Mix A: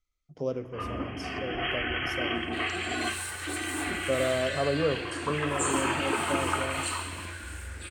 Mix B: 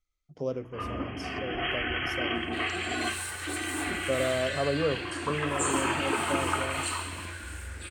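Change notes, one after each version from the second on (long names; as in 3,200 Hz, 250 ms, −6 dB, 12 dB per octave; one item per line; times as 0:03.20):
speech: send −10.0 dB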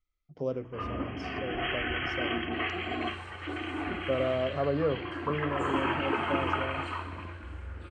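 second sound −12.0 dB
master: add high-frequency loss of the air 150 metres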